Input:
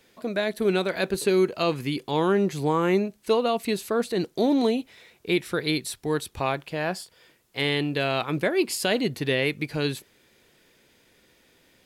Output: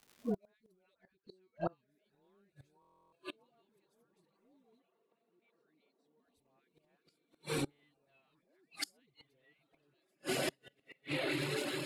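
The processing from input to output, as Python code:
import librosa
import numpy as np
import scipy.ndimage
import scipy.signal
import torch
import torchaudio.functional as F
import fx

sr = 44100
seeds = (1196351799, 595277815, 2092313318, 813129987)

p1 = x + fx.echo_diffused(x, sr, ms=1566, feedback_pct=50, wet_db=-6.0, dry=0)
p2 = fx.dereverb_blind(p1, sr, rt60_s=0.63)
p3 = fx.transient(p2, sr, attack_db=-8, sustain_db=5)
p4 = fx.dispersion(p3, sr, late='highs', ms=140.0, hz=870.0)
p5 = fx.dmg_crackle(p4, sr, seeds[0], per_s=300.0, level_db=-36.0)
p6 = fx.gate_flip(p5, sr, shuts_db=-22.0, range_db=-34)
p7 = fx.quant_float(p6, sr, bits=2)
p8 = p6 + (p7 * 10.0 ** (-11.0 / 20.0))
p9 = fx.noise_reduce_blind(p8, sr, reduce_db=13)
p10 = fx.air_absorb(p9, sr, metres=140.0, at=(0.94, 1.88))
p11 = fx.bandpass_edges(p10, sr, low_hz=210.0, high_hz=fx.line((4.79, 2700.0), (6.18, 4400.0)), at=(4.79, 6.18), fade=0.02)
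p12 = fx.buffer_glitch(p11, sr, at_s=(2.8,), block=1024, repeats=13)
y = p12 * 10.0 ** (-3.0 / 20.0)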